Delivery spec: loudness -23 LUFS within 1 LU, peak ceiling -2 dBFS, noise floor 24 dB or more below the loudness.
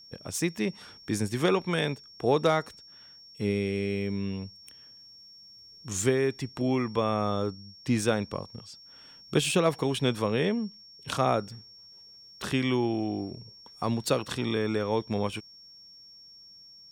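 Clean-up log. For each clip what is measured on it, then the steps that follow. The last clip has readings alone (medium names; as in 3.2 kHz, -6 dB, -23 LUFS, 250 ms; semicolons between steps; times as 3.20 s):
steady tone 5.5 kHz; tone level -49 dBFS; loudness -29.0 LUFS; peak level -11.0 dBFS; loudness target -23.0 LUFS
-> band-stop 5.5 kHz, Q 30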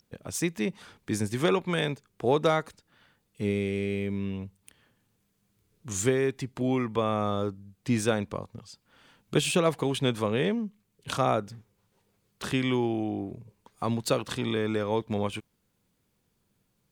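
steady tone not found; loudness -29.0 LUFS; peak level -11.0 dBFS; loudness target -23.0 LUFS
-> trim +6 dB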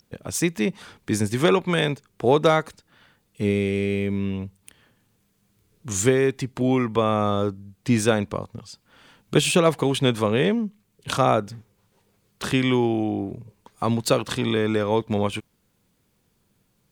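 loudness -23.0 LUFS; peak level -5.0 dBFS; noise floor -68 dBFS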